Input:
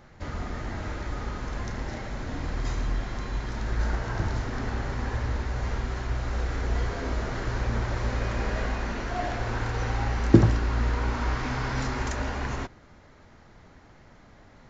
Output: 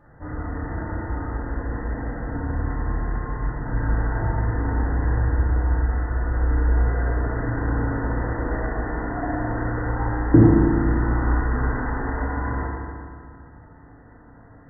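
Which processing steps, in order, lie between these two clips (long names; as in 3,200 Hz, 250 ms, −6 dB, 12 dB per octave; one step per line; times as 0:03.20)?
linear-phase brick-wall low-pass 2,000 Hz
feedback delay network reverb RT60 2.1 s, low-frequency decay 1.2×, high-frequency decay 0.75×, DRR −6.5 dB
level −3.5 dB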